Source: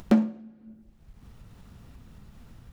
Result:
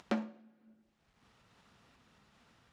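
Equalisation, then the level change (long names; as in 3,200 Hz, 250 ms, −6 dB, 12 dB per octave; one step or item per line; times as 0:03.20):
high-pass filter 1,000 Hz 6 dB per octave
high-frequency loss of the air 69 metres
−2.0 dB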